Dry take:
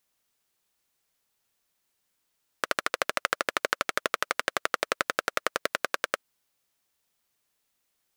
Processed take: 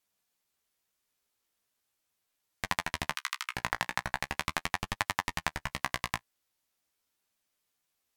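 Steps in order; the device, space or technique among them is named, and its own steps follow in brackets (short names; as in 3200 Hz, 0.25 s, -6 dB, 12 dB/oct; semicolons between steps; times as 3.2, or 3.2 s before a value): 3.11–3.52 steep high-pass 1500 Hz 96 dB/oct; alien voice (ring modulator 450 Hz; flange 0.4 Hz, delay 9.5 ms, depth 8.1 ms, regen +19%); gain +2 dB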